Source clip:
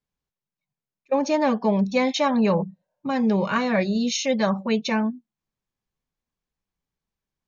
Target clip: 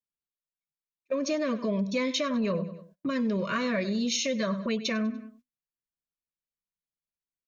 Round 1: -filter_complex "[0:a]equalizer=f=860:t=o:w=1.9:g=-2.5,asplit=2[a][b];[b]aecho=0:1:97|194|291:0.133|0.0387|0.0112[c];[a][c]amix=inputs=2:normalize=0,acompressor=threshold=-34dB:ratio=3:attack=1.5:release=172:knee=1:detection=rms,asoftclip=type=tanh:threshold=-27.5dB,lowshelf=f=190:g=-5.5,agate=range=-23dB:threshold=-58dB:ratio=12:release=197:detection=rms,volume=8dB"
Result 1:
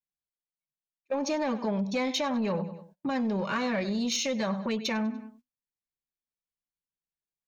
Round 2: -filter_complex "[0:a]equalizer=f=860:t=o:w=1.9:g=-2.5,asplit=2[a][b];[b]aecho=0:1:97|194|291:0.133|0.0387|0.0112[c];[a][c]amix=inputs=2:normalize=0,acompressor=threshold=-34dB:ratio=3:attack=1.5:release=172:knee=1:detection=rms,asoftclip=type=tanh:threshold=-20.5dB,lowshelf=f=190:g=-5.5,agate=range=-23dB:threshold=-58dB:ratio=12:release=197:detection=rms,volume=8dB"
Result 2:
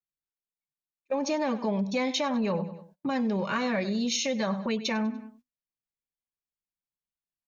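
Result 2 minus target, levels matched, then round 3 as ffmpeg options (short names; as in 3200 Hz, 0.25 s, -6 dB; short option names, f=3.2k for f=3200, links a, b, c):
1000 Hz band +4.0 dB
-filter_complex "[0:a]equalizer=f=860:t=o:w=1.9:g=-2.5,asplit=2[a][b];[b]aecho=0:1:97|194|291:0.133|0.0387|0.0112[c];[a][c]amix=inputs=2:normalize=0,acompressor=threshold=-34dB:ratio=3:attack=1.5:release=172:knee=1:detection=rms,asuperstop=centerf=830:order=8:qfactor=3.2,asoftclip=type=tanh:threshold=-20.5dB,lowshelf=f=190:g=-5.5,agate=range=-23dB:threshold=-58dB:ratio=12:release=197:detection=rms,volume=8dB"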